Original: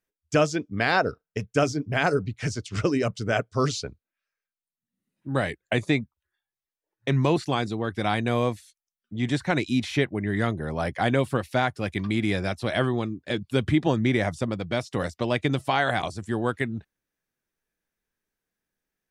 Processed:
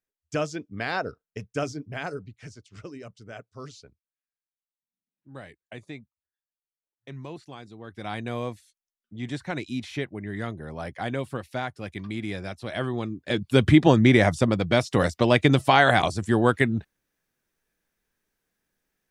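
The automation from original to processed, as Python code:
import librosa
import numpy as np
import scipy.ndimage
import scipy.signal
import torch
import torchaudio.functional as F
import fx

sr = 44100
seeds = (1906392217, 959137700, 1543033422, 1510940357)

y = fx.gain(x, sr, db=fx.line((1.7, -6.5), (2.69, -17.0), (7.67, -17.0), (8.17, -7.0), (12.66, -7.0), (13.64, 6.0)))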